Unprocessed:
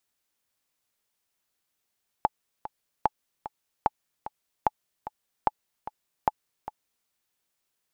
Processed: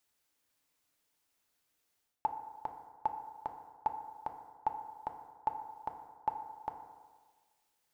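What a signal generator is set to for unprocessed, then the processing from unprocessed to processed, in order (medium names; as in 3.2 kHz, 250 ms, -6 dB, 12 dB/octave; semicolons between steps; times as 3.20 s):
metronome 149 bpm, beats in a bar 2, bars 6, 855 Hz, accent 14 dB -7.5 dBFS
reverse; compression 12:1, threshold -31 dBFS; reverse; FDN reverb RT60 1.5 s, low-frequency decay 0.8×, high-frequency decay 0.35×, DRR 5 dB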